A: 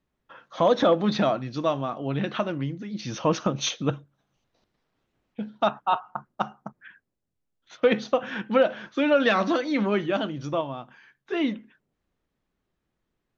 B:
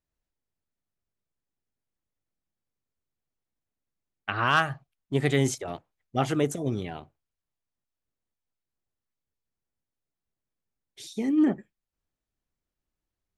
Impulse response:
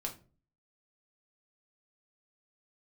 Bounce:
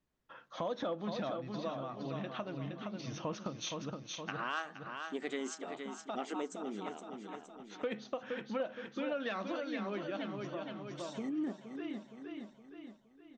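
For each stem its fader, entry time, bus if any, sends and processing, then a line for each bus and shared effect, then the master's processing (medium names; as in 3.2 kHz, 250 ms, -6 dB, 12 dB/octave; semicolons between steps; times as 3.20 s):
-6.0 dB, 0.00 s, no send, echo send -6.5 dB, auto duck -18 dB, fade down 0.55 s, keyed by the second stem
-3.5 dB, 0.00 s, no send, echo send -11.5 dB, FFT band-pass 180–8300 Hz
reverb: none
echo: feedback delay 467 ms, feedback 41%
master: compression 2:1, threshold -43 dBFS, peak gain reduction 13 dB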